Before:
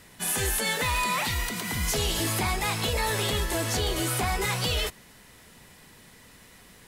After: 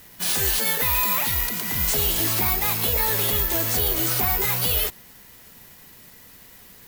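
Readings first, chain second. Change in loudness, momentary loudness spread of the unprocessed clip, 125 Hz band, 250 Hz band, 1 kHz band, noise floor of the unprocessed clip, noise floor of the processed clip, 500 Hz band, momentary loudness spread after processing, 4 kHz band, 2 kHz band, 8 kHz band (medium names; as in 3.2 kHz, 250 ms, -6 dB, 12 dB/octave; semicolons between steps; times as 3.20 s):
+6.5 dB, 3 LU, 0.0 dB, 0.0 dB, 0.0 dB, -53 dBFS, -48 dBFS, 0.0 dB, 3 LU, +1.5 dB, +0.5 dB, +3.5 dB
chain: careless resampling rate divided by 3×, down none, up zero stuff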